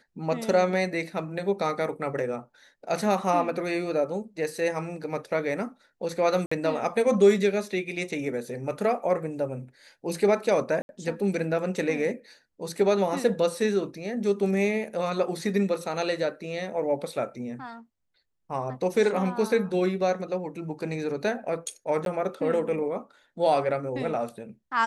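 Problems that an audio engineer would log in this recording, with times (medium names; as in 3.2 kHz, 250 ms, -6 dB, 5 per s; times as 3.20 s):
6.46–6.51 s: dropout 55 ms
10.82–10.89 s: dropout 71 ms
22.05–22.06 s: dropout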